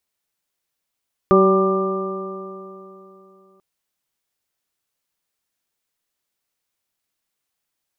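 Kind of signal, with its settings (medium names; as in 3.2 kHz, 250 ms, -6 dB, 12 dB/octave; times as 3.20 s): stretched partials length 2.29 s, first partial 190 Hz, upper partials 5/-2/-11/-15/1 dB, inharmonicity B 0.0024, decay 3.11 s, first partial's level -16 dB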